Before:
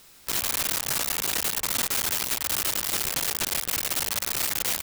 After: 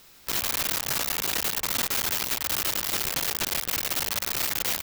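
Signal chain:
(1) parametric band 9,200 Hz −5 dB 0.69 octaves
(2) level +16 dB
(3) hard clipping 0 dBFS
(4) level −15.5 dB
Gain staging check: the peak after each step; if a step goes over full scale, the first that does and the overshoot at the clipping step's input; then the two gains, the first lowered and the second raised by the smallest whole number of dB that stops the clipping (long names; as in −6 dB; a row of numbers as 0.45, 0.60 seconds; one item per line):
−18.0, −2.0, −2.0, −17.5 dBFS
no step passes full scale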